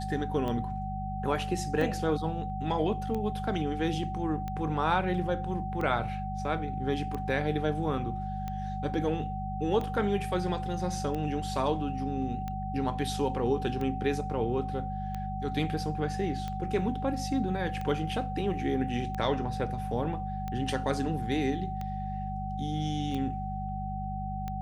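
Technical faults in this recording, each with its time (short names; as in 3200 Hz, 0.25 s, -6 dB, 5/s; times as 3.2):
hum 50 Hz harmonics 4 -36 dBFS
tick 45 rpm -23 dBFS
tone 760 Hz -36 dBFS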